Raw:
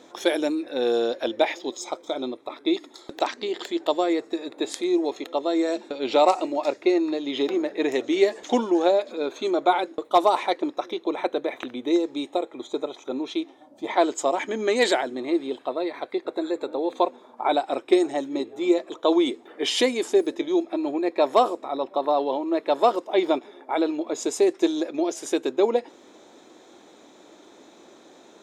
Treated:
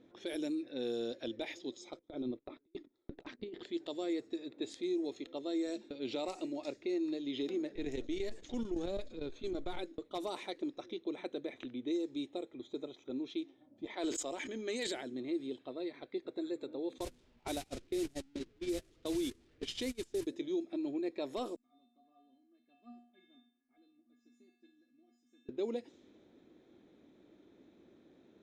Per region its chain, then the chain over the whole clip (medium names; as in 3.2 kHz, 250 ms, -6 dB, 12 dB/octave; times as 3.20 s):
1.99–3.63 s: treble shelf 2.3 kHz -11.5 dB + compressor with a negative ratio -30 dBFS, ratio -0.5 + gate -41 dBFS, range -20 dB
7.75–9.77 s: partial rectifier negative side -3 dB + square tremolo 8.9 Hz, depth 65%, duty 85%
13.85–14.87 s: expander -33 dBFS + high-pass 420 Hz 6 dB/octave + decay stretcher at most 39 dB/s
16.98–20.27 s: one-bit delta coder 64 kbps, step -24 dBFS + gate -25 dBFS, range -26 dB
21.56–25.49 s: peaking EQ 750 Hz -11 dB 0.66 oct + feedback comb 240 Hz, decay 0.59 s, harmonics odd, mix 100% + flutter echo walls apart 10.2 m, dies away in 0.27 s
whole clip: level-controlled noise filter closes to 2.1 kHz, open at -19 dBFS; amplifier tone stack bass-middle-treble 10-0-1; peak limiter -38.5 dBFS; trim +10.5 dB